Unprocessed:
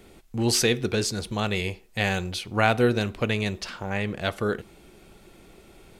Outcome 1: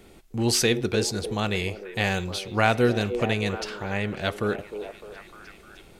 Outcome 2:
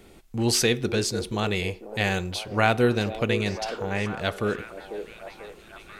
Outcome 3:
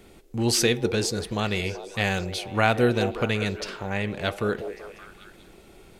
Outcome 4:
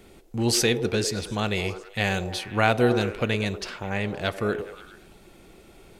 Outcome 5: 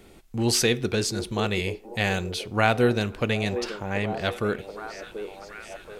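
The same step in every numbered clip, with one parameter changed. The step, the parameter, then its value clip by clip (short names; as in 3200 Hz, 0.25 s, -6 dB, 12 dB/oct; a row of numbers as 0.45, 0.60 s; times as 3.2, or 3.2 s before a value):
delay with a stepping band-pass, time: 0.304, 0.493, 0.191, 0.105, 0.731 s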